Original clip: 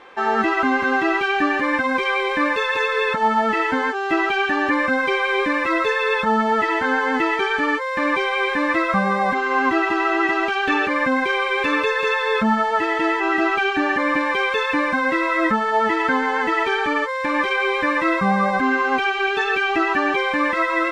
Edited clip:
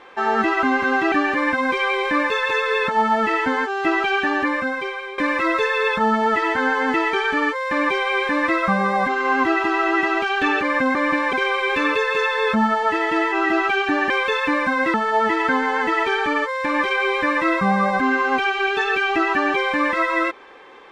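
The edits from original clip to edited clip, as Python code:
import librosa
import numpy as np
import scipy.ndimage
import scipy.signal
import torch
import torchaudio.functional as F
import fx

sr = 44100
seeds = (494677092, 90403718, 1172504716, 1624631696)

y = fx.edit(x, sr, fx.cut(start_s=1.12, length_s=0.26),
    fx.fade_out_to(start_s=4.53, length_s=0.91, floor_db=-15.5),
    fx.move(start_s=13.98, length_s=0.38, to_s=11.21),
    fx.cut(start_s=15.2, length_s=0.34), tone=tone)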